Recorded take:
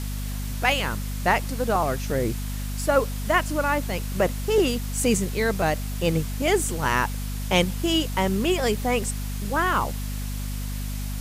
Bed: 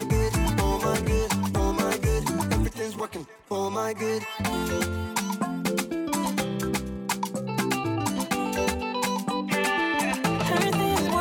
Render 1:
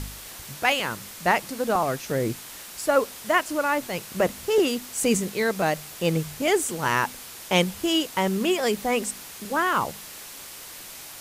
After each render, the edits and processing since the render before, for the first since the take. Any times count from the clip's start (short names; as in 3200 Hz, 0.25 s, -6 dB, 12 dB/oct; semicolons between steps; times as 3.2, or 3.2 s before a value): de-hum 50 Hz, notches 5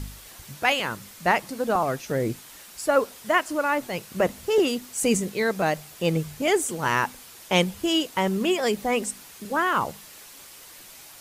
denoiser 6 dB, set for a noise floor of -41 dBFS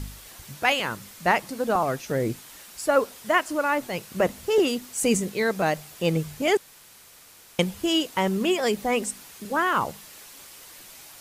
6.57–7.59 room tone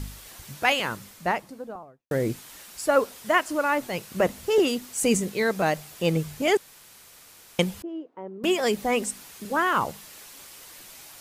0.82–2.11 studio fade out; 7.82–8.44 ladder band-pass 420 Hz, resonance 20%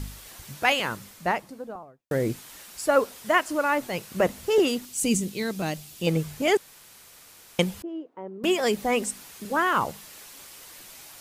4.85–6.07 band shelf 950 Hz -8.5 dB 2.6 oct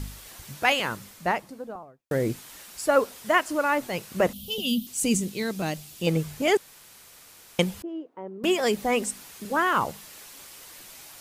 4.33–4.87 EQ curve 140 Hz 0 dB, 220 Hz +13 dB, 330 Hz -25 dB, 510 Hz -10 dB, 890 Hz -20 dB, 2000 Hz -28 dB, 3100 Hz +8 dB, 4800 Hz -3 dB, 7700 Hz -8 dB, 13000 Hz +7 dB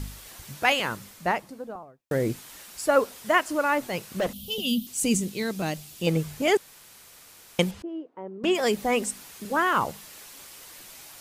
3.96–4.61 hard clip -22 dBFS; 7.71–8.55 air absorption 67 m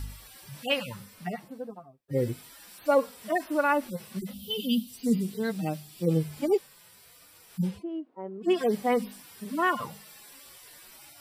median-filter separation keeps harmonic; notch 6600 Hz, Q 5.7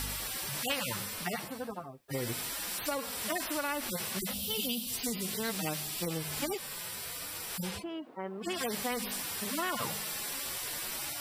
compressor, threshold -27 dBFS, peak gain reduction 10 dB; spectral compressor 2:1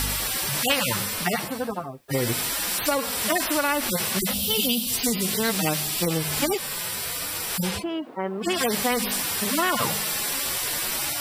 gain +10.5 dB